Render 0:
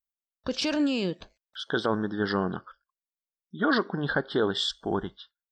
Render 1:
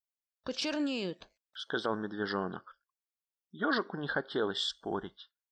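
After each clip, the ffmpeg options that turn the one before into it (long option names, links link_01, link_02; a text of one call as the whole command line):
ffmpeg -i in.wav -af "lowshelf=frequency=190:gain=-8.5,volume=-5dB" out.wav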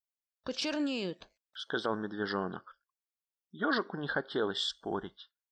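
ffmpeg -i in.wav -af anull out.wav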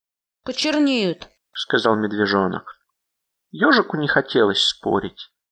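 ffmpeg -i in.wav -af "dynaudnorm=framelen=380:gausssize=3:maxgain=11dB,volume=4.5dB" out.wav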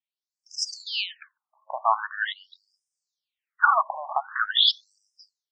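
ffmpeg -i in.wav -af "lowshelf=frequency=510:width_type=q:width=1.5:gain=-8.5,afftfilt=real='re*between(b*sr/1024,780*pow(7000/780,0.5+0.5*sin(2*PI*0.44*pts/sr))/1.41,780*pow(7000/780,0.5+0.5*sin(2*PI*0.44*pts/sr))*1.41)':imag='im*between(b*sr/1024,780*pow(7000/780,0.5+0.5*sin(2*PI*0.44*pts/sr))/1.41,780*pow(7000/780,0.5+0.5*sin(2*PI*0.44*pts/sr))*1.41)':win_size=1024:overlap=0.75" out.wav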